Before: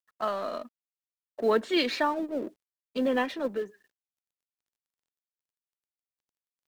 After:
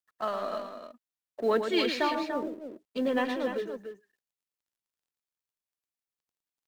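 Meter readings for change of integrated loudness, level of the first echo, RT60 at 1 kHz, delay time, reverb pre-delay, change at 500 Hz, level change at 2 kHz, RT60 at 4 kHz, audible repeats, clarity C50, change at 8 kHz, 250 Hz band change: -1.0 dB, -7.5 dB, no reverb, 112 ms, no reverb, -0.5 dB, -1.0 dB, no reverb, 2, no reverb, -0.5 dB, -0.5 dB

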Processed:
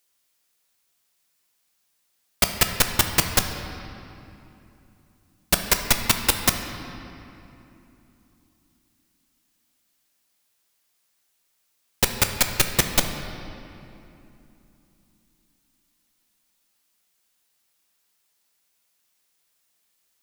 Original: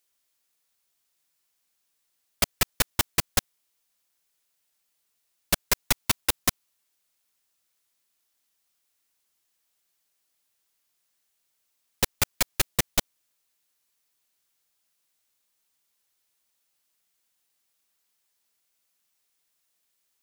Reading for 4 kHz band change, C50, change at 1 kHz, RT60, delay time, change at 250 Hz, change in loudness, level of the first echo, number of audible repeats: +5.0 dB, 6.5 dB, +5.5 dB, 2.9 s, no echo, +6.0 dB, +4.0 dB, no echo, no echo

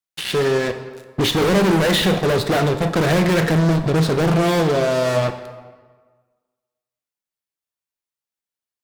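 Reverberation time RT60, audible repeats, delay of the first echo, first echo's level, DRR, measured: 1.4 s, no echo, no echo, no echo, 8.0 dB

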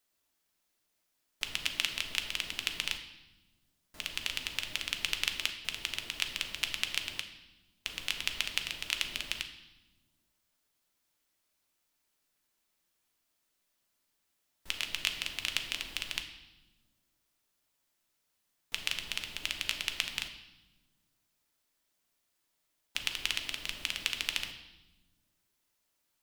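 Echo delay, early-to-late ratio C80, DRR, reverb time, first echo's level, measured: no echo, 11.0 dB, 5.0 dB, 1.1 s, no echo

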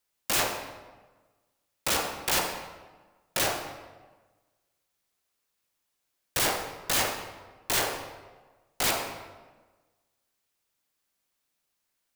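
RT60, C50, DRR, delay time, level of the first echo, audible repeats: 1.3 s, 6.0 dB, 4.5 dB, no echo, no echo, no echo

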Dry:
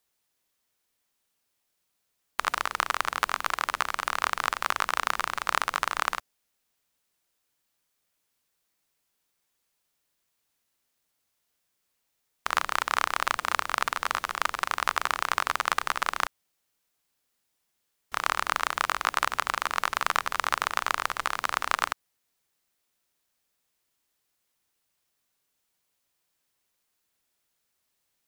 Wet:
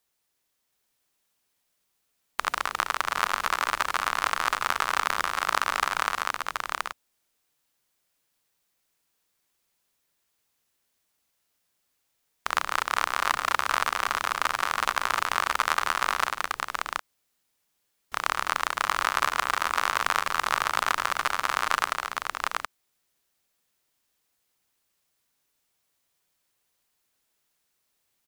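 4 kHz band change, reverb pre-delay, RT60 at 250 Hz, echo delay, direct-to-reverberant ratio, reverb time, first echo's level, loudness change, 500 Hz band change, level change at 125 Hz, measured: +2.0 dB, no reverb, no reverb, 210 ms, no reverb, no reverb, -10.5 dB, +1.5 dB, +2.0 dB, +2.0 dB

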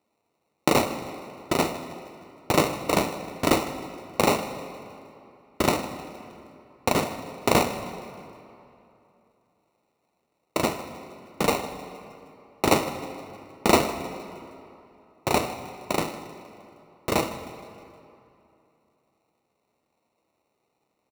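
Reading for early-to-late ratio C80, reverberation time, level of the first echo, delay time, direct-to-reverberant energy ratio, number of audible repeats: 10.5 dB, 2.8 s, -17.5 dB, 156 ms, 9.0 dB, 4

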